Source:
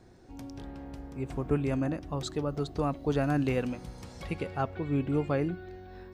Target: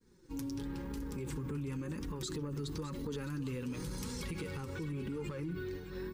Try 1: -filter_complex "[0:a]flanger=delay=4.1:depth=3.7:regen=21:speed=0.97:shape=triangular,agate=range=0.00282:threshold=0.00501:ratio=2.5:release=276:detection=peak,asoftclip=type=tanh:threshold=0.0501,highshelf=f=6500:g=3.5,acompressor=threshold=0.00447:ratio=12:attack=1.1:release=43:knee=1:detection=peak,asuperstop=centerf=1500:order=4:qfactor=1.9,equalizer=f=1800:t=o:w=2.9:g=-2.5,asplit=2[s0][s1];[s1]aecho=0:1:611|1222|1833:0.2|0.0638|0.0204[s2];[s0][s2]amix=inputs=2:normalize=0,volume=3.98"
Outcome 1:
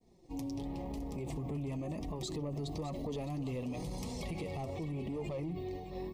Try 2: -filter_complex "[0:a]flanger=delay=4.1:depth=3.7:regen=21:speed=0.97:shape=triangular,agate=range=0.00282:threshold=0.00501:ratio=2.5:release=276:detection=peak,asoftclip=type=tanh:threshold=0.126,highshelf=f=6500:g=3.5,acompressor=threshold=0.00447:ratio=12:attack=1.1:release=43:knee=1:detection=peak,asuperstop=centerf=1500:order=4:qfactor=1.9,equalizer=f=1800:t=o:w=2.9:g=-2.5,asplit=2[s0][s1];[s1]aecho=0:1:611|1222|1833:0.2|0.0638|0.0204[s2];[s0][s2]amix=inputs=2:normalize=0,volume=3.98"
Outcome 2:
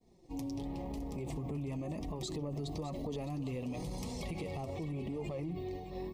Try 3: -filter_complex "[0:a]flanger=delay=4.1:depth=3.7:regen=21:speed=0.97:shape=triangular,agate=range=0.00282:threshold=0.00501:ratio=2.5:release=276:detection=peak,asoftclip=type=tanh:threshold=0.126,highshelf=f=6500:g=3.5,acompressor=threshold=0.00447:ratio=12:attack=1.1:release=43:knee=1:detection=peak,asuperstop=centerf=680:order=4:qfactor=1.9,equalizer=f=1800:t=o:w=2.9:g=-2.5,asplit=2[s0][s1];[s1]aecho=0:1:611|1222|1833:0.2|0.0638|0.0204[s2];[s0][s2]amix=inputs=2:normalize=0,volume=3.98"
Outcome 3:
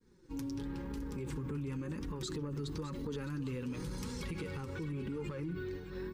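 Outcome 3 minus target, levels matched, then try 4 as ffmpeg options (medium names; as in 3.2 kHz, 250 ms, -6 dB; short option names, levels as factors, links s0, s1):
8 kHz band -3.5 dB
-filter_complex "[0:a]flanger=delay=4.1:depth=3.7:regen=21:speed=0.97:shape=triangular,agate=range=0.00282:threshold=0.00501:ratio=2.5:release=276:detection=peak,asoftclip=type=tanh:threshold=0.126,highshelf=f=6500:g=11.5,acompressor=threshold=0.00447:ratio=12:attack=1.1:release=43:knee=1:detection=peak,asuperstop=centerf=680:order=4:qfactor=1.9,equalizer=f=1800:t=o:w=2.9:g=-2.5,asplit=2[s0][s1];[s1]aecho=0:1:611|1222|1833:0.2|0.0638|0.0204[s2];[s0][s2]amix=inputs=2:normalize=0,volume=3.98"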